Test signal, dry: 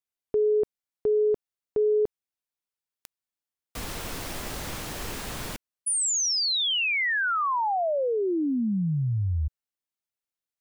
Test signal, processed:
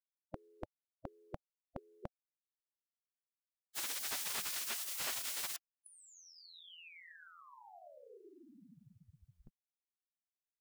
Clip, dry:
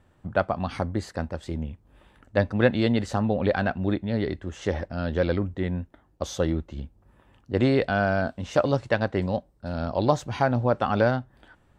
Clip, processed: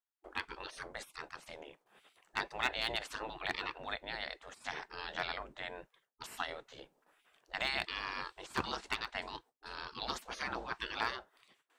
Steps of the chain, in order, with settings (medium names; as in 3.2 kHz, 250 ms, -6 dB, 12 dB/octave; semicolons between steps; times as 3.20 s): gate with hold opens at -51 dBFS, closes at -54 dBFS, hold 46 ms, range -32 dB; spectral gate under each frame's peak -20 dB weak; hard clipper -23.5 dBFS; trim +1 dB